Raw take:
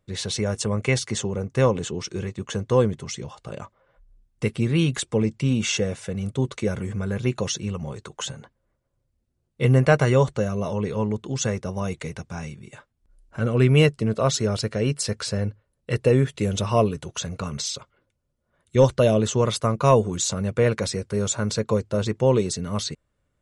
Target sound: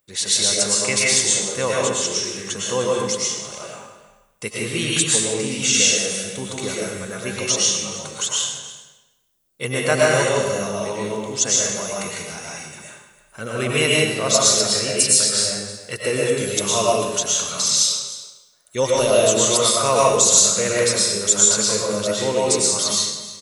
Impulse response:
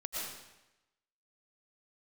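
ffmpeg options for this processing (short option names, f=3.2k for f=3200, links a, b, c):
-filter_complex "[0:a]aemphasis=mode=production:type=riaa,aecho=1:1:309:0.141[a];[1:a]atrim=start_sample=2205[b];[a][b]afir=irnorm=-1:irlink=0,volume=2.5dB"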